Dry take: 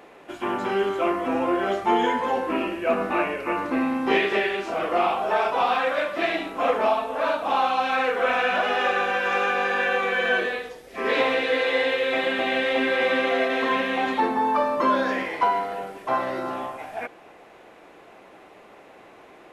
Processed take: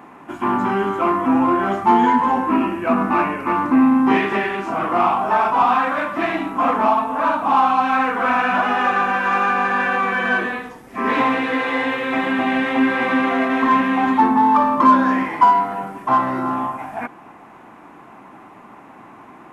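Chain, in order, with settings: graphic EQ 125/250/500/1000/4000 Hz +8/+11/-10/+11/-8 dB; in parallel at -10.5 dB: soft clip -19.5 dBFS, distortion -9 dB

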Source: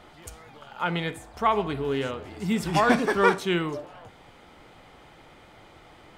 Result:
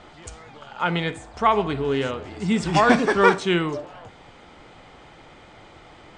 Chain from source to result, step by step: steep low-pass 8600 Hz 48 dB/oct; gain +4 dB

